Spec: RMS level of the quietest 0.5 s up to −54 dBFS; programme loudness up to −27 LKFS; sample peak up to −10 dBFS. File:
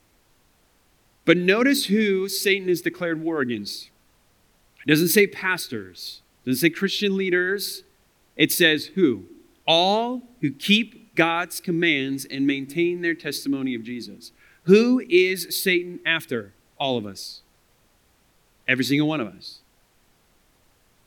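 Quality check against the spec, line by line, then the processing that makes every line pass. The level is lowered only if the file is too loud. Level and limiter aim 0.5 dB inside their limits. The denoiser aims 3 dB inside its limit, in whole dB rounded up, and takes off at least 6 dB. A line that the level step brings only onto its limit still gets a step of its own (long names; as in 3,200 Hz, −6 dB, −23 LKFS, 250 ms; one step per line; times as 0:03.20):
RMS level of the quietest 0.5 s −62 dBFS: in spec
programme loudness −22.0 LKFS: out of spec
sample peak −2.5 dBFS: out of spec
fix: level −5.5 dB
brickwall limiter −10.5 dBFS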